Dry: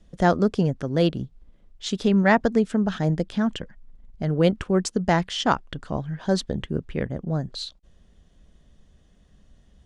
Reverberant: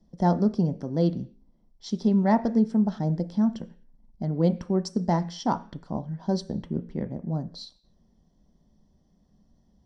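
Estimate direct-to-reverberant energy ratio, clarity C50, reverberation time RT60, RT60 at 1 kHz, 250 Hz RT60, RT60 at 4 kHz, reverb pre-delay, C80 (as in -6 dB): 9.5 dB, 17.5 dB, 0.45 s, 0.45 s, 0.55 s, n/a, 3 ms, 22.0 dB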